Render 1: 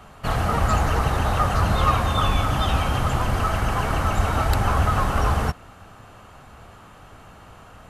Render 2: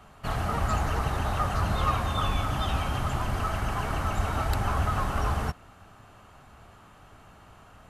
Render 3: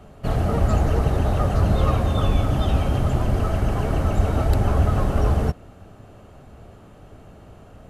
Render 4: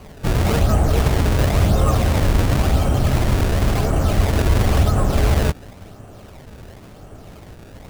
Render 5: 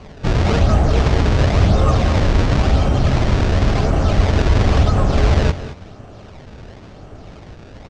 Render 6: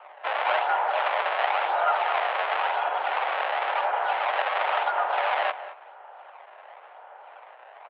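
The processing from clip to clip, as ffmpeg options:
ffmpeg -i in.wav -af "bandreject=frequency=500:width=12,volume=-6.5dB" out.wav
ffmpeg -i in.wav -af "lowshelf=frequency=730:width_type=q:width=1.5:gain=9" out.wav
ffmpeg -i in.wav -filter_complex "[0:a]asplit=2[link_01][link_02];[link_02]alimiter=limit=-17.5dB:level=0:latency=1,volume=-1.5dB[link_03];[link_01][link_03]amix=inputs=2:normalize=0,acrusher=samples=24:mix=1:aa=0.000001:lfo=1:lforange=38.4:lforate=0.95" out.wav
ffmpeg -i in.wav -af "lowpass=frequency=6100:width=0.5412,lowpass=frequency=6100:width=1.3066,aecho=1:1:198|220:0.168|0.158,volume=2dB" out.wav
ffmpeg -i in.wav -af "adynamicsmooth=sensitivity=1:basefreq=2100,highpass=frequency=500:width_type=q:width=0.5412,highpass=frequency=500:width_type=q:width=1.307,lowpass=frequency=3100:width_type=q:width=0.5176,lowpass=frequency=3100:width_type=q:width=0.7071,lowpass=frequency=3100:width_type=q:width=1.932,afreqshift=160" out.wav

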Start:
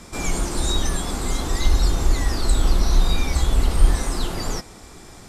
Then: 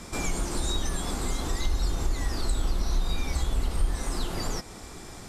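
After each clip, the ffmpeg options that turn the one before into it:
ffmpeg -i in.wav -af "acompressor=threshold=-29dB:ratio=2" out.wav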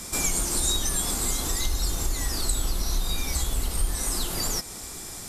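ffmpeg -i in.wav -af "aemphasis=mode=production:type=75fm" out.wav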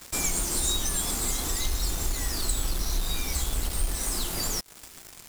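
ffmpeg -i in.wav -af "acrusher=bits=4:mix=0:aa=0.5,volume=-2dB" out.wav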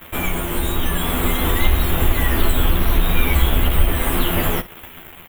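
ffmpeg -i in.wav -filter_complex "[0:a]firequalizer=gain_entry='entry(3200,0);entry(4800,-30);entry(14000,-1)':delay=0.05:min_phase=1,dynaudnorm=framelen=310:gausssize=7:maxgain=5dB,asplit=2[link_01][link_02];[link_02]aecho=0:1:12|63:0.668|0.188[link_03];[link_01][link_03]amix=inputs=2:normalize=0,volume=8.5dB" out.wav

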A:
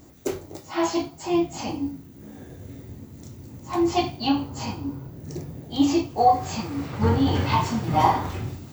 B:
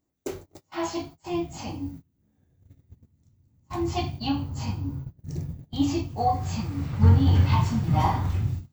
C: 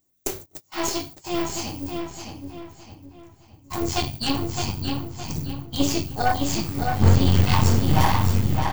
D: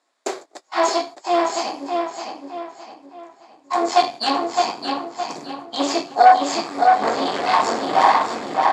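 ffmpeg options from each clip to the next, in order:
ffmpeg -i in.wav -af "bandreject=frequency=60:width_type=h:width=6,bandreject=frequency=120:width_type=h:width=6,agate=range=-24dB:threshold=-36dB:ratio=16:detection=peak,asubboost=boost=5.5:cutoff=160,volume=-5dB" out.wav
ffmpeg -i in.wav -filter_complex "[0:a]crystalizer=i=3.5:c=0,aeval=exprs='0.531*(cos(1*acos(clip(val(0)/0.531,-1,1)))-cos(1*PI/2))+0.075*(cos(8*acos(clip(val(0)/0.531,-1,1)))-cos(8*PI/2))':channel_layout=same,asplit=2[link_01][link_02];[link_02]adelay=614,lowpass=frequency=4800:poles=1,volume=-4.5dB,asplit=2[link_03][link_04];[link_04]adelay=614,lowpass=frequency=4800:poles=1,volume=0.39,asplit=2[link_05][link_06];[link_06]adelay=614,lowpass=frequency=4800:poles=1,volume=0.39,asplit=2[link_07][link_08];[link_08]adelay=614,lowpass=frequency=4800:poles=1,volume=0.39,asplit=2[link_09][link_10];[link_10]adelay=614,lowpass=frequency=4800:poles=1,volume=0.39[link_11];[link_03][link_05][link_07][link_09][link_11]amix=inputs=5:normalize=0[link_12];[link_01][link_12]amix=inputs=2:normalize=0" out.wav
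ffmpeg -i in.wav -filter_complex "[0:a]asplit=2[link_01][link_02];[link_02]aeval=exprs='0.15*(abs(mod(val(0)/0.15+3,4)-2)-1)':channel_layout=same,volume=-7dB[link_03];[link_01][link_03]amix=inputs=2:normalize=0,acrusher=bits=10:mix=0:aa=0.000001,highpass=frequency=320:width=0.5412,highpass=frequency=320:width=1.3066,equalizer=frequency=340:width_type=q:width=4:gain=-3,equalizer=frequency=700:width_type=q:width=4:gain=9,equalizer=frequency=1100:width_type=q:width=4:gain=6,equalizer=frequency=1700:width_type=q:width=4:gain=3,equalizer=frequency=2900:width_type=q:width=4:gain=-7,equalizer=frequency=6000:width_type=q:width=4:gain=-9,lowpass=frequency=6900:width=0.5412,lowpass=frequency=6900:width=1.3066,volume=3.5dB" out.wav

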